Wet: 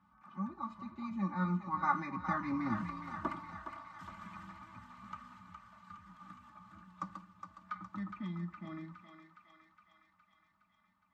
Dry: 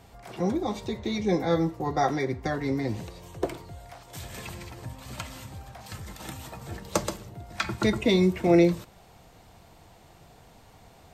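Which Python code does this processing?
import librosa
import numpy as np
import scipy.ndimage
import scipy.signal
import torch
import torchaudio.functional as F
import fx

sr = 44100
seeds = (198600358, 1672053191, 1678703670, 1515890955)

p1 = fx.doppler_pass(x, sr, speed_mps=26, closest_m=16.0, pass_at_s=2.88)
p2 = fx.double_bandpass(p1, sr, hz=460.0, octaves=2.7)
p3 = p2 + 0.81 * np.pad(p2, (int(3.4 * sr / 1000.0), 0))[:len(p2)]
p4 = p3 + fx.echo_thinned(p3, sr, ms=414, feedback_pct=70, hz=730.0, wet_db=-6.0, dry=0)
y = F.gain(torch.from_numpy(p4), 10.0).numpy()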